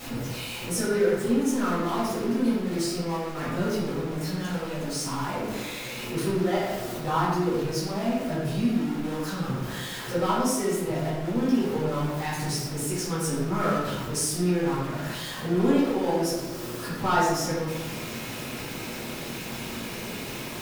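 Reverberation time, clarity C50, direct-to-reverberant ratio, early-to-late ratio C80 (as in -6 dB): 1.3 s, -0.5 dB, -10.5 dB, 2.0 dB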